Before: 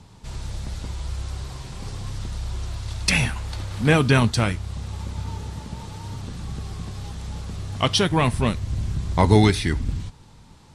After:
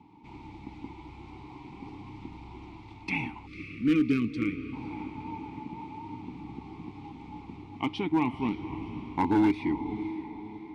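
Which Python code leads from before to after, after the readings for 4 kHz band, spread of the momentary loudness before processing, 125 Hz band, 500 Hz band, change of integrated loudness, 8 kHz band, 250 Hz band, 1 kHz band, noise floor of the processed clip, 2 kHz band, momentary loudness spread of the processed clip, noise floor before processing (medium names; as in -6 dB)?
-19.0 dB, 17 LU, -17.5 dB, -12.0 dB, -7.0 dB, under -25 dB, -2.5 dB, -7.0 dB, -48 dBFS, -11.0 dB, 20 LU, -49 dBFS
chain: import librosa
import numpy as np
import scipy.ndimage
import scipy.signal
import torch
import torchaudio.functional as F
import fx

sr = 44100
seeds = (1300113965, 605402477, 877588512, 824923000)

p1 = fx.rider(x, sr, range_db=4, speed_s=0.5)
p2 = x + F.gain(torch.from_numpy(p1), 1.0).numpy()
p3 = fx.vowel_filter(p2, sr, vowel='u')
p4 = fx.peak_eq(p3, sr, hz=8600.0, db=-9.0, octaves=1.8)
p5 = p4 + fx.echo_diffused(p4, sr, ms=528, feedback_pct=50, wet_db=-12.0, dry=0)
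p6 = np.clip(p5, -10.0 ** (-18.5 / 20.0), 10.0 ** (-18.5 / 20.0))
y = fx.spec_erase(p6, sr, start_s=3.47, length_s=1.26, low_hz=550.0, high_hz=1100.0)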